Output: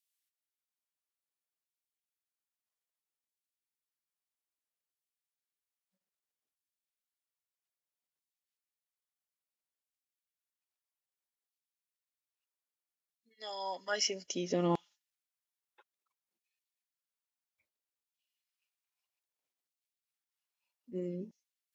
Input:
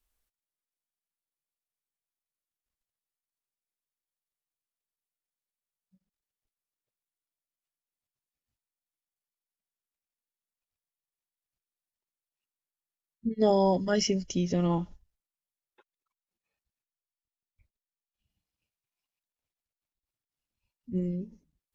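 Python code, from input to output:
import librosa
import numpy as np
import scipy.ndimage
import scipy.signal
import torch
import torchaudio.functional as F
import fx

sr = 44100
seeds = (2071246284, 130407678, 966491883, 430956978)

y = fx.rider(x, sr, range_db=10, speed_s=2.0)
y = fx.filter_lfo_highpass(y, sr, shape='saw_down', hz=0.61, low_hz=230.0, high_hz=3400.0, q=0.9)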